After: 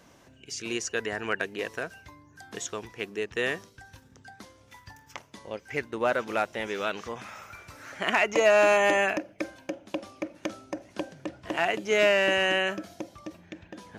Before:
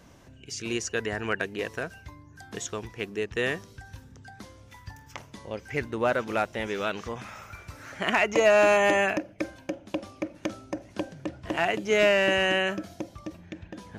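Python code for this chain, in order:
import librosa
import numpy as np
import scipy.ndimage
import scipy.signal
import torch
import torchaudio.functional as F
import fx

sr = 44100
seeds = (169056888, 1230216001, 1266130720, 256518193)

y = fx.low_shelf(x, sr, hz=150.0, db=-11.5)
y = fx.transient(y, sr, attack_db=0, sustain_db=-5, at=(3.68, 6.09), fade=0.02)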